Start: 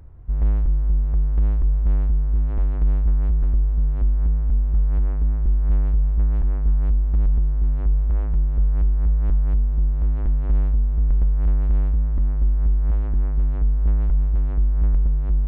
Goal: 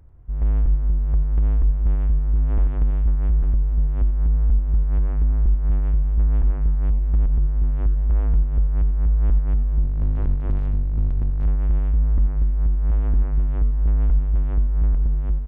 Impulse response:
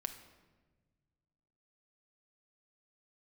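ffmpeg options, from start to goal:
-filter_complex "[0:a]dynaudnorm=f=310:g=3:m=12dB,aresample=8000,aresample=44100,acompressor=threshold=-10dB:ratio=3,aecho=1:1:92|184|276:0.224|0.0784|0.0274,asplit=3[a][b][c];[a]afade=t=out:st=9.82:d=0.02[d];[b]aeval=exprs='clip(val(0),-1,0.15)':c=same,afade=t=in:st=9.82:d=0.02,afade=t=out:st=11.43:d=0.02[e];[c]afade=t=in:st=11.43:d=0.02[f];[d][e][f]amix=inputs=3:normalize=0,volume=-6dB"

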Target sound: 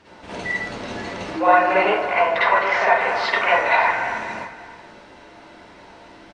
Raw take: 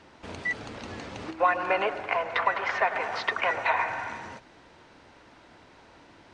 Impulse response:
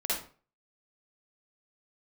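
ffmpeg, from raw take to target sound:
-filter_complex "[0:a]aecho=1:1:566:0.15[a];[1:a]atrim=start_sample=2205[b];[a][b]afir=irnorm=-1:irlink=0,volume=2dB"

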